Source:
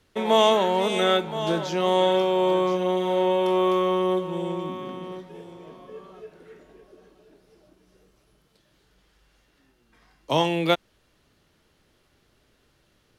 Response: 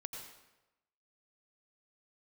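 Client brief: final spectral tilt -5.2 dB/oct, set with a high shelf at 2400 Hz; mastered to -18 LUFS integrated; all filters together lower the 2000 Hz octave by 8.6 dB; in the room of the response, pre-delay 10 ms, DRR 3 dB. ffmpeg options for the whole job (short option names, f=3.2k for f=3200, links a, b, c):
-filter_complex "[0:a]equalizer=f=2k:t=o:g=-8,highshelf=f=2.4k:g=-7,asplit=2[a][b];[1:a]atrim=start_sample=2205,adelay=10[c];[b][c]afir=irnorm=-1:irlink=0,volume=-1dB[d];[a][d]amix=inputs=2:normalize=0,volume=6dB"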